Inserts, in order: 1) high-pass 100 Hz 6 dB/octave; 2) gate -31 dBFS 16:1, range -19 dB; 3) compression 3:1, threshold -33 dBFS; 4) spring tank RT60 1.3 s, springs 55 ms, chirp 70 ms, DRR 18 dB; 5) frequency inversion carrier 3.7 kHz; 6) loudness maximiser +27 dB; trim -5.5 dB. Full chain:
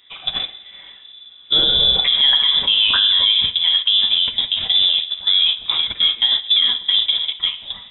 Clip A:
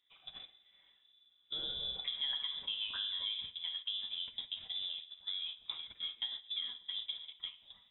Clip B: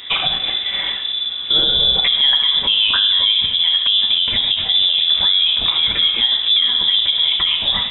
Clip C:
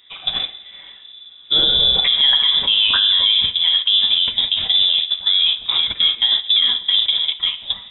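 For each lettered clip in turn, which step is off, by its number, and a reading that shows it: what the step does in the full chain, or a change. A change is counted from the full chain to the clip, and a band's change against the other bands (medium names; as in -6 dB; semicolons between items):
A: 6, crest factor change +5.5 dB; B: 2, momentary loudness spread change -4 LU; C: 1, momentary loudness spread change -1 LU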